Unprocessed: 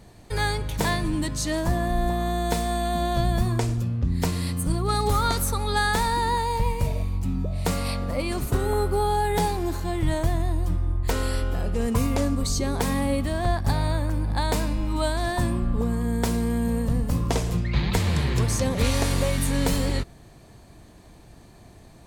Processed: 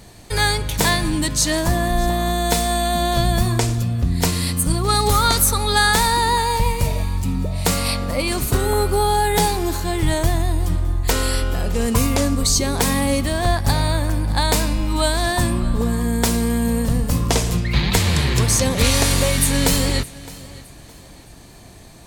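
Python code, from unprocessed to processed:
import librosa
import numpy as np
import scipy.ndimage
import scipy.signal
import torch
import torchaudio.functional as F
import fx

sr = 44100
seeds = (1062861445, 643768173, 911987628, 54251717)

y = fx.high_shelf(x, sr, hz=2100.0, db=8.0)
y = fx.echo_feedback(y, sr, ms=614, feedback_pct=34, wet_db=-20)
y = y * librosa.db_to_amplitude(4.5)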